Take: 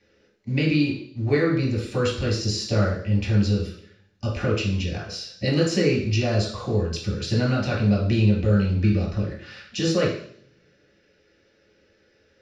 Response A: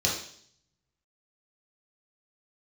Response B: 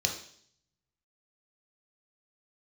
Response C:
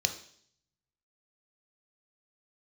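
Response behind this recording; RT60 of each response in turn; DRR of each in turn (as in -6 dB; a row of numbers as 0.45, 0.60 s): A; 0.60, 0.60, 0.60 s; -4.5, 2.0, 6.5 dB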